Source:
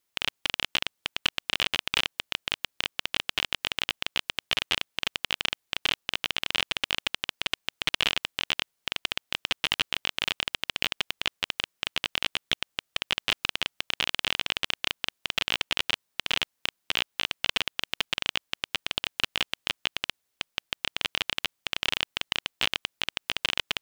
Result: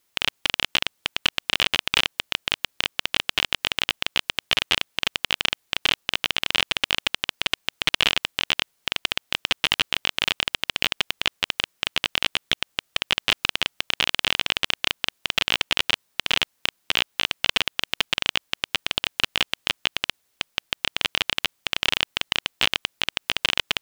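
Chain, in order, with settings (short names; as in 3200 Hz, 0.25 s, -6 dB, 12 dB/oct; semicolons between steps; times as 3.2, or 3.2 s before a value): maximiser +9.5 dB; gain -1 dB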